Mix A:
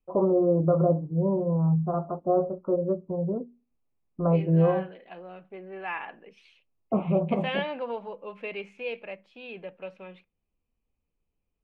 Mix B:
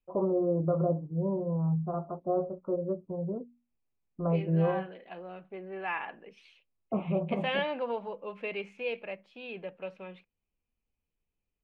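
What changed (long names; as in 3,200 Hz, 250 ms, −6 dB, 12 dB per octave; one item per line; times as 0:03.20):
first voice −5.5 dB
reverb: off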